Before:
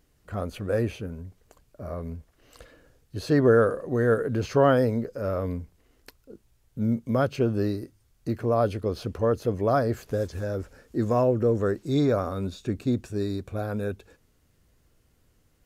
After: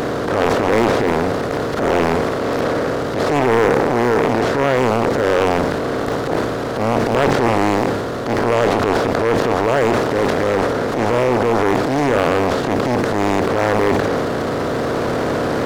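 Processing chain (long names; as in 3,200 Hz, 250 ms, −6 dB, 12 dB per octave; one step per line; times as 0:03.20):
compressor on every frequency bin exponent 0.2
transient designer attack −8 dB, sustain +7 dB
in parallel at 0 dB: speech leveller 2 s
on the sum: highs frequency-modulated by the lows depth 0.88 ms
level −5.5 dB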